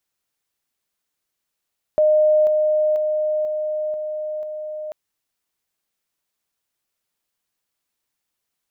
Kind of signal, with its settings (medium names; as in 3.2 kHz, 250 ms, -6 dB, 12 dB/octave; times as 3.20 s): level ladder 613 Hz -12 dBFS, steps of -3 dB, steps 6, 0.49 s 0.00 s